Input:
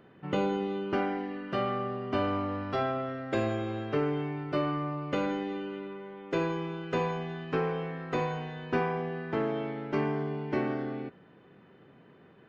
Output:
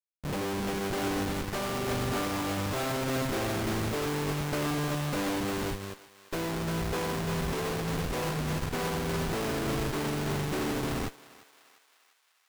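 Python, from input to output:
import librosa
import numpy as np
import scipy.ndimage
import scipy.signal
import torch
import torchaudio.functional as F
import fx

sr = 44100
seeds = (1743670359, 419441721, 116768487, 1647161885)

y = fx.schmitt(x, sr, flips_db=-35.5)
y = fx.echo_thinned(y, sr, ms=349, feedback_pct=63, hz=820.0, wet_db=-4)
y = fx.upward_expand(y, sr, threshold_db=-40.0, expansion=2.5)
y = y * librosa.db_to_amplitude(3.0)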